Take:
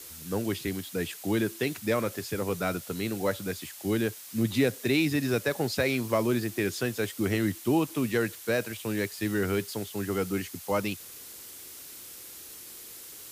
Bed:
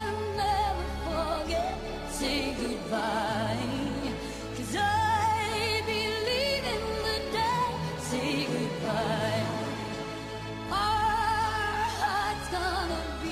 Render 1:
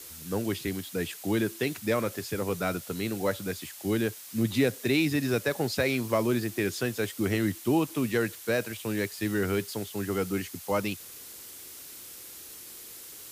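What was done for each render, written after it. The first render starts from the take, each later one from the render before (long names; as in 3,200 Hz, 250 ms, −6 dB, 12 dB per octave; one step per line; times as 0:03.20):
no processing that can be heard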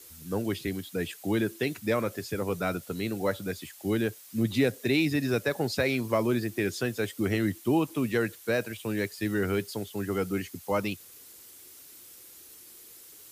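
broadband denoise 7 dB, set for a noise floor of −45 dBFS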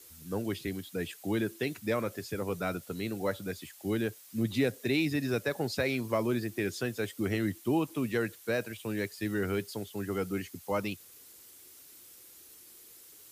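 level −3.5 dB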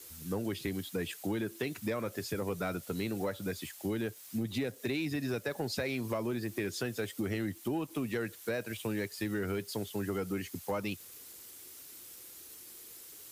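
downward compressor, threshold −34 dBFS, peak gain reduction 11 dB
leveller curve on the samples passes 1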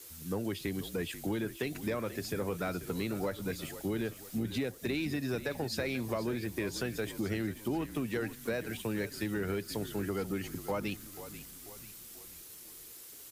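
echo with shifted repeats 488 ms, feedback 49%, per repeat −45 Hz, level −13 dB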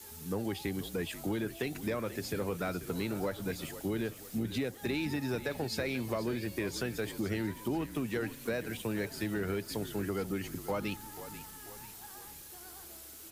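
mix in bed −26 dB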